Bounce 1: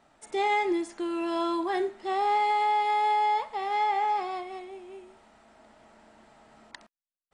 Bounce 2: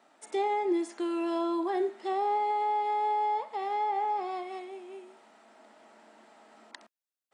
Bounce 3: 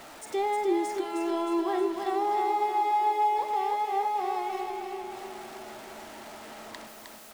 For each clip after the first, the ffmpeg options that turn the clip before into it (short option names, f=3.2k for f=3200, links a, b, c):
-filter_complex "[0:a]highpass=f=230:w=0.5412,highpass=f=230:w=1.3066,acrossover=split=860[a][b];[b]acompressor=threshold=-41dB:ratio=6[c];[a][c]amix=inputs=2:normalize=0"
-af "aeval=exprs='val(0)+0.5*0.00794*sgn(val(0))':c=same,aecho=1:1:311|622|933|1244|1555|1866|2177|2488:0.562|0.326|0.189|0.11|0.0636|0.0369|0.0214|0.0124"